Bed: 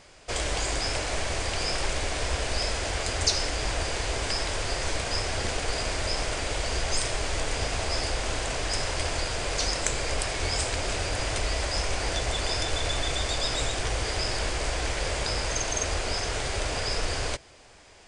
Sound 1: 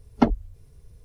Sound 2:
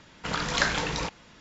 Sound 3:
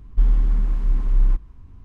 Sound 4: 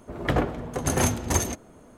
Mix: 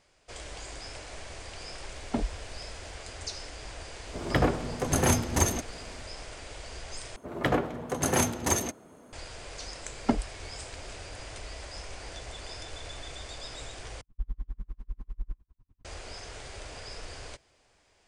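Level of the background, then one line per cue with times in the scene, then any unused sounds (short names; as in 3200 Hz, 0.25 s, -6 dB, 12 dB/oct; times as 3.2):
bed -13.5 dB
1.92 add 1 -4.5 dB + auto swell 0.103 s
4.06 add 4 -1 dB
7.16 replace with 4 -1 dB + HPF 170 Hz 6 dB/oct
9.87 add 1 -7 dB
14.01 replace with 3 -13 dB + dB-linear tremolo 10 Hz, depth 39 dB
not used: 2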